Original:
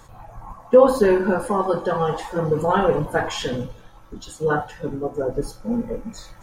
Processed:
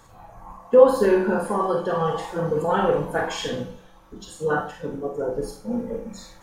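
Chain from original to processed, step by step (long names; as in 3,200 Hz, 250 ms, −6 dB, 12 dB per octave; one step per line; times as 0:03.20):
low-shelf EQ 75 Hz −7 dB
four-comb reverb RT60 0.35 s, combs from 33 ms, DRR 3.5 dB
level −3.5 dB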